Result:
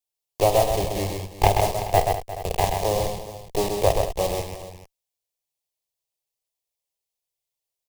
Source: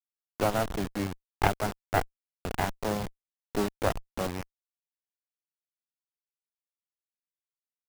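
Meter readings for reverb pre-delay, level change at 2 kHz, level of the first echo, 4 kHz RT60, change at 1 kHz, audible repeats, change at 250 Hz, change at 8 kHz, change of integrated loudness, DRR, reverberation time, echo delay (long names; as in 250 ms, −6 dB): no reverb audible, +1.0 dB, −12.5 dB, no reverb audible, +8.5 dB, 5, +0.5 dB, +10.5 dB, +8.0 dB, no reverb audible, no reverb audible, 50 ms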